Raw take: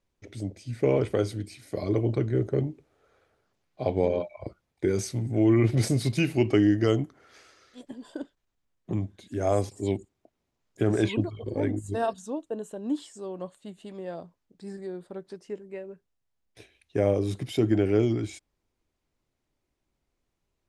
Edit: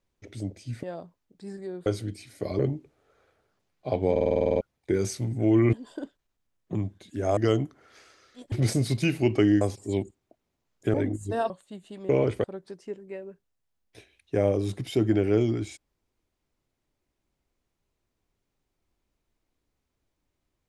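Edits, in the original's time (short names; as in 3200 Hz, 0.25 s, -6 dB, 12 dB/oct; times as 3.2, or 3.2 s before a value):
0.83–1.18 swap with 14.03–15.06
1.91–2.53 cut
4.05 stutter in place 0.05 s, 10 plays
5.67–6.76 swap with 7.91–9.55
10.88–11.57 cut
12.13–13.44 cut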